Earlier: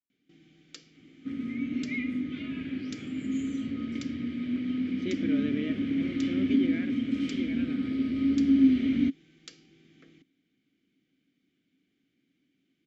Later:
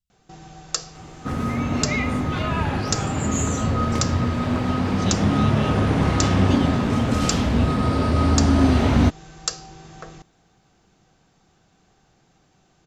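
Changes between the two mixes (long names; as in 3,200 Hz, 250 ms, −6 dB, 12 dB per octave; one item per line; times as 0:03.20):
speech: add linear-phase brick-wall band-stop 220–2,600 Hz
master: remove formant filter i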